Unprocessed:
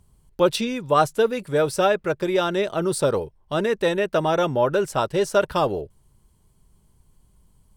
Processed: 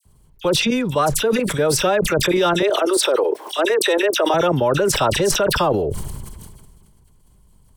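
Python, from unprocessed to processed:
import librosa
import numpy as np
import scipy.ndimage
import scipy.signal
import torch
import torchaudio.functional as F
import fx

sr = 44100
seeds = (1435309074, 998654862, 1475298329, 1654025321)

y = fx.steep_highpass(x, sr, hz=310.0, slope=48, at=(2.57, 4.29))
y = fx.level_steps(y, sr, step_db=12)
y = fx.dispersion(y, sr, late='lows', ms=54.0, hz=2100.0)
y = fx.sustainer(y, sr, db_per_s=29.0)
y = y * librosa.db_to_amplitude(7.5)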